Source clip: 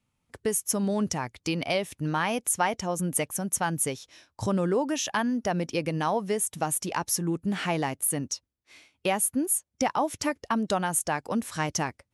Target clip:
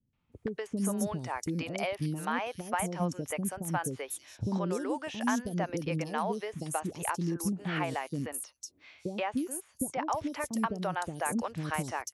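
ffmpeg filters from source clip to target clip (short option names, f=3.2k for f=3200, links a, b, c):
-filter_complex "[0:a]acrossover=split=2700|7700[a][b][c];[a]acompressor=threshold=-27dB:ratio=4[d];[b]acompressor=threshold=-49dB:ratio=4[e];[c]acompressor=threshold=-41dB:ratio=4[f];[d][e][f]amix=inputs=3:normalize=0,acrossover=split=440|4500[g][h][i];[h]adelay=130[j];[i]adelay=320[k];[g][j][k]amix=inputs=3:normalize=0"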